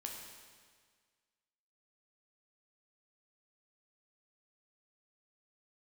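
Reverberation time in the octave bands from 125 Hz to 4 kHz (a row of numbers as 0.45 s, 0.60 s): 1.7 s, 1.7 s, 1.7 s, 1.7 s, 1.7 s, 1.6 s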